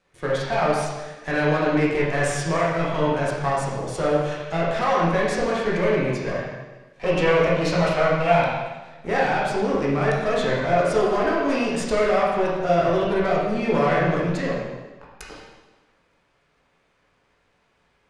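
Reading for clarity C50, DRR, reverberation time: 0.0 dB, -6.0 dB, 1.2 s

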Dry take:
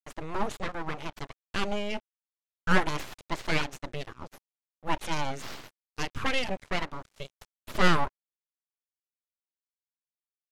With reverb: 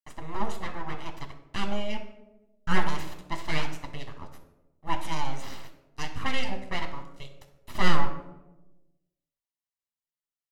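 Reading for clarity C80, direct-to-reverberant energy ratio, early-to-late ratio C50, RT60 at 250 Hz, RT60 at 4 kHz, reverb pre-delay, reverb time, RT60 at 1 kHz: 12.0 dB, 4.5 dB, 9.0 dB, 1.3 s, 0.50 s, 9 ms, 1.0 s, 0.85 s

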